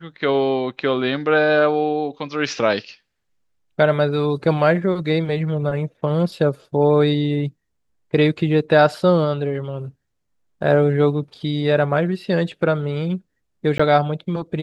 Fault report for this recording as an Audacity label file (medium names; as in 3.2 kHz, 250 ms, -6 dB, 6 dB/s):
13.780000	13.790000	dropout 15 ms